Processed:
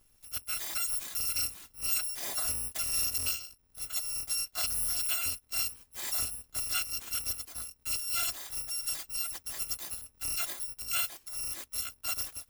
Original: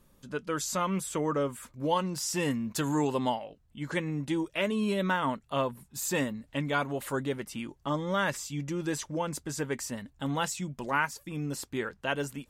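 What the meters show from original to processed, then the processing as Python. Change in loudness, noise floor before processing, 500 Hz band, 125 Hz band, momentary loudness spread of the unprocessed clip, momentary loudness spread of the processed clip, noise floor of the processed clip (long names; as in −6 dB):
0.0 dB, −65 dBFS, −22.5 dB, −17.5 dB, 7 LU, 8 LU, −67 dBFS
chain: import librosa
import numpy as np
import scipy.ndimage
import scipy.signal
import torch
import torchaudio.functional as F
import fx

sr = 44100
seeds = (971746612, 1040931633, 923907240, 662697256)

y = fx.bit_reversed(x, sr, seeds[0], block=256)
y = y * 10.0 ** (-3.0 / 20.0)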